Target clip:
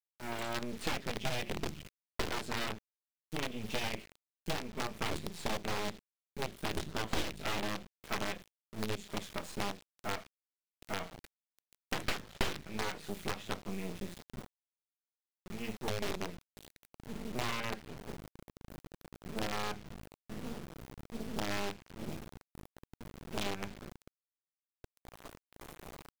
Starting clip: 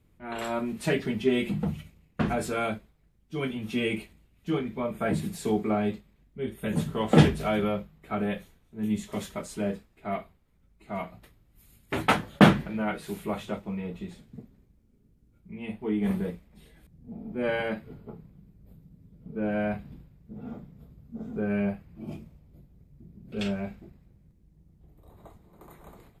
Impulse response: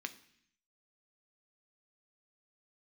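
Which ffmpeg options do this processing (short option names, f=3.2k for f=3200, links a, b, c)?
-filter_complex "[0:a]acrusher=bits=5:dc=4:mix=0:aa=0.000001,aeval=exprs='abs(val(0))':c=same,acrossover=split=2400|6300[a][b][c];[a]acompressor=threshold=-36dB:ratio=4[d];[b]acompressor=threshold=-43dB:ratio=4[e];[c]acompressor=threshold=-55dB:ratio=4[f];[d][e][f]amix=inputs=3:normalize=0,volume=2dB"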